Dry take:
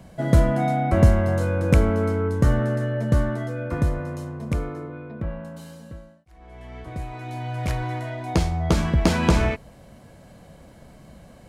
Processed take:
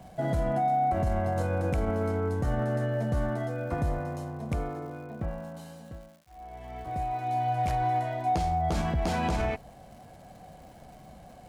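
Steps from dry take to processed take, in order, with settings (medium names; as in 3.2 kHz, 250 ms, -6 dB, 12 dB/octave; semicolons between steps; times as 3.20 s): peaking EQ 750 Hz +14.5 dB 0.26 oct; peak limiter -15.5 dBFS, peak gain reduction 11.5 dB; crackle 250 per s -44 dBFS; trim -4.5 dB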